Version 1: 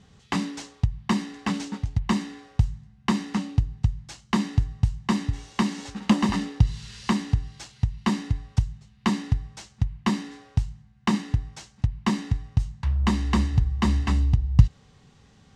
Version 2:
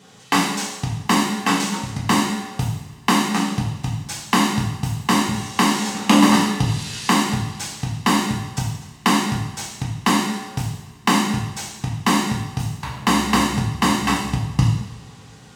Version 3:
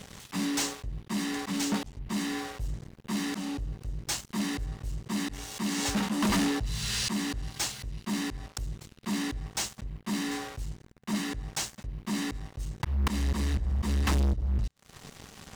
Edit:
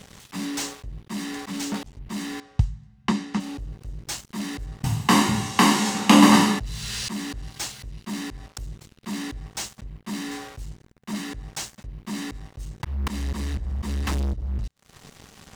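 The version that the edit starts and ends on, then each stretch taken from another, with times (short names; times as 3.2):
3
2.4–3.4 from 1
4.84–6.59 from 2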